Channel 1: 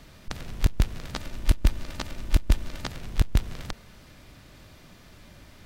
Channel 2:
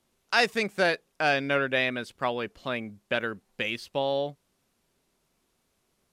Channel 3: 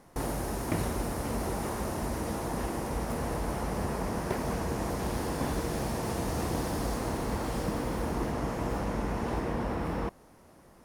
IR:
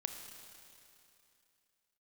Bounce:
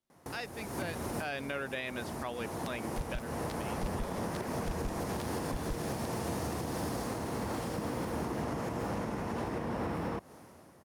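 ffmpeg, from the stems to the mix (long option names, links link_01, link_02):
-filter_complex "[0:a]asoftclip=type=tanh:threshold=-20dB,acrusher=bits=3:mix=0:aa=0.5,adelay=2350,volume=-6dB[link_01];[1:a]volume=-6.5dB,afade=type=in:start_time=0.83:duration=0.55:silence=0.316228,afade=type=out:start_time=2.96:duration=0.32:silence=0.266073,asplit=2[link_02][link_03];[2:a]acompressor=threshold=-34dB:ratio=6,highpass=frequency=74:width=0.5412,highpass=frequency=74:width=1.3066,dynaudnorm=framelen=150:gausssize=9:maxgain=10dB,adelay=100,volume=-4dB[link_04];[link_03]apad=whole_len=482469[link_05];[link_04][link_05]sidechaincompress=threshold=-37dB:ratio=8:attack=7.5:release=792[link_06];[link_01][link_02][link_06]amix=inputs=3:normalize=0,alimiter=level_in=2dB:limit=-24dB:level=0:latency=1:release=182,volume=-2dB"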